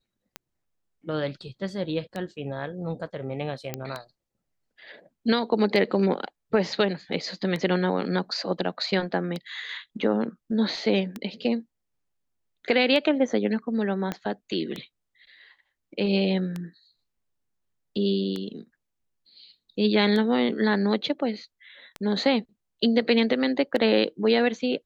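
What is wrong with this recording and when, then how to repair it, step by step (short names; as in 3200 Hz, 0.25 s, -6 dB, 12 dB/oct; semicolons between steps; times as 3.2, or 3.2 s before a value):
tick 33 1/3 rpm -18 dBFS
3.74 pop -14 dBFS
14.12 pop -15 dBFS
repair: de-click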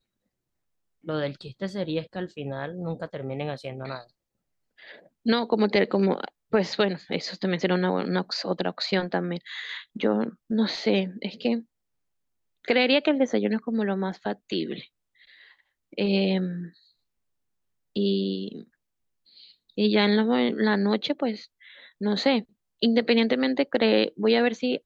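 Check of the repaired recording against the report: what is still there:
14.12 pop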